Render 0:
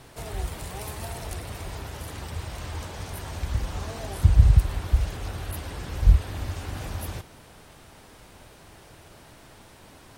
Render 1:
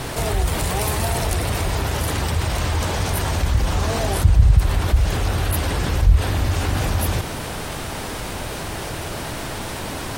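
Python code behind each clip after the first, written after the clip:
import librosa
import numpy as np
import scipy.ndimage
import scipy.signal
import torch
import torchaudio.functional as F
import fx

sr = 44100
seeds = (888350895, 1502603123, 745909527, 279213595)

y = fx.env_flatten(x, sr, amount_pct=50)
y = y * 10.0 ** (1.0 / 20.0)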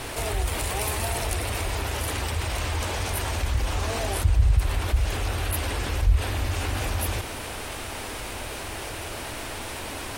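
y = fx.graphic_eq_15(x, sr, hz=(160, 2500, 10000), db=(-11, 4, 3))
y = y * 10.0 ** (-5.5 / 20.0)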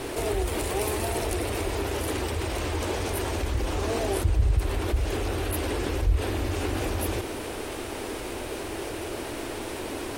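y = fx.peak_eq(x, sr, hz=360.0, db=12.0, octaves=1.2)
y = y * 10.0 ** (-3.5 / 20.0)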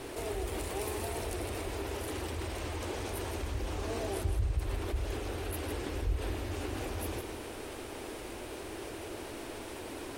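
y = x + 10.0 ** (-8.5 / 20.0) * np.pad(x, (int(160 * sr / 1000.0), 0))[:len(x)]
y = y * 10.0 ** (-9.0 / 20.0)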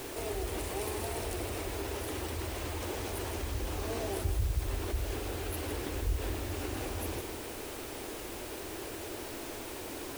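y = fx.quant_dither(x, sr, seeds[0], bits=8, dither='triangular')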